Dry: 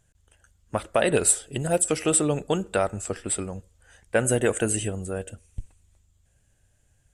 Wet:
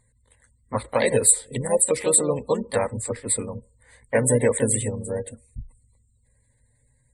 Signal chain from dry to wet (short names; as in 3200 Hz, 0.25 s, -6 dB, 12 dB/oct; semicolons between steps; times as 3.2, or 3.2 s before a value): harmoniser +3 st -5 dB; ripple EQ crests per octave 0.97, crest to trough 12 dB; spectral gate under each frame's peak -30 dB strong; gain -1.5 dB